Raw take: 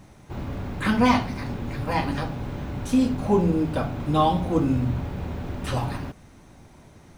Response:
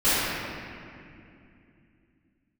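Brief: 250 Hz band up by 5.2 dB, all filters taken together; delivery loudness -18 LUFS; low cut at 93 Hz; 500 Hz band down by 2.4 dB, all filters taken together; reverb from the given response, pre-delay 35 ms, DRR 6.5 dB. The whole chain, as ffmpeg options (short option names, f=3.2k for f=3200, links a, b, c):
-filter_complex "[0:a]highpass=93,equalizer=f=250:t=o:g=7.5,equalizer=f=500:t=o:g=-6,asplit=2[a][b];[1:a]atrim=start_sample=2205,adelay=35[c];[b][c]afir=irnorm=-1:irlink=0,volume=-25.5dB[d];[a][d]amix=inputs=2:normalize=0,volume=2.5dB"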